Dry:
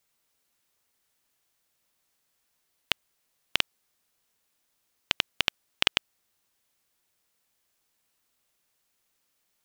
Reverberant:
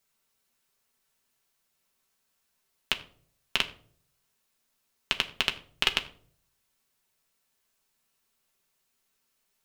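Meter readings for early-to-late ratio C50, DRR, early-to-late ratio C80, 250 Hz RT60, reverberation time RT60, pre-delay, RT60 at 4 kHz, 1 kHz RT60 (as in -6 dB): 15.0 dB, 3.5 dB, 18.0 dB, 0.70 s, 0.55 s, 4 ms, 0.35 s, 0.45 s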